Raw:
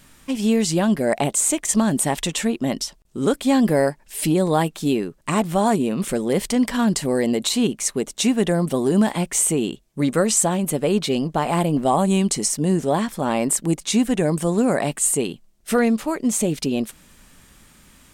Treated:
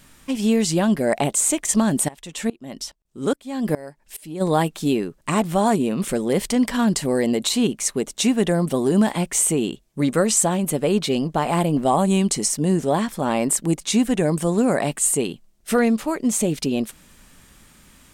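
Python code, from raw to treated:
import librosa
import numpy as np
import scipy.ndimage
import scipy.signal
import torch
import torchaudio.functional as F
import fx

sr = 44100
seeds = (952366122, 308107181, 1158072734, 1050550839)

y = fx.tremolo_decay(x, sr, direction='swelling', hz=2.4, depth_db=23, at=(2.07, 4.4), fade=0.02)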